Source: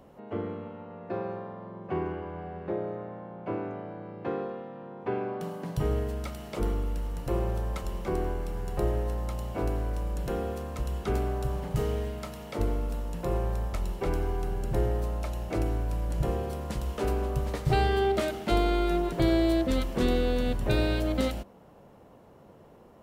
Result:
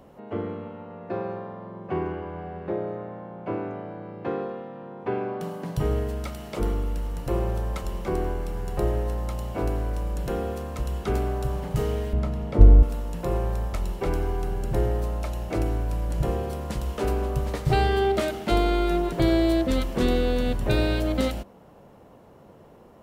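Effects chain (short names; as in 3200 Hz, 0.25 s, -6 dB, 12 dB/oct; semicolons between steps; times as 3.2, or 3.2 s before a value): 12.13–12.83 tilt -3.5 dB/oct; gain +3 dB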